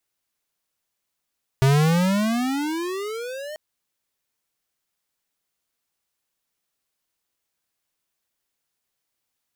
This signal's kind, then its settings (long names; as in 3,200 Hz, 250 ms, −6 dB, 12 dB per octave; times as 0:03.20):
pitch glide with a swell square, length 1.94 s, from 131 Hz, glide +27 semitones, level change −18.5 dB, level −15.5 dB